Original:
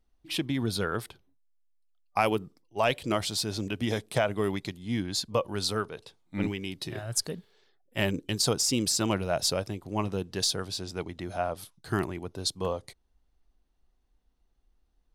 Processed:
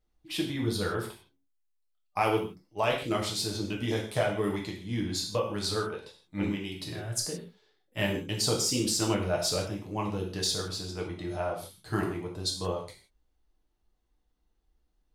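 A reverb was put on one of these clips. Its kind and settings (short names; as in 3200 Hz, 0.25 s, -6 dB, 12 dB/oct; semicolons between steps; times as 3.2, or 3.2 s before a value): non-linear reverb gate 0.19 s falling, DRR -1.5 dB; gain -5 dB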